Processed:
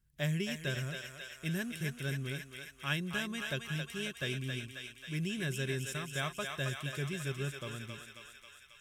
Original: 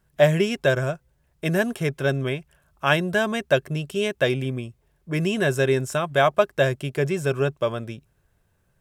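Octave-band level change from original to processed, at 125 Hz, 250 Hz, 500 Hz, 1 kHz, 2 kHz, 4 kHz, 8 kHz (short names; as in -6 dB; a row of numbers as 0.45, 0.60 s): -10.5, -12.5, -21.0, -18.5, -11.5, -8.0, -6.0 dB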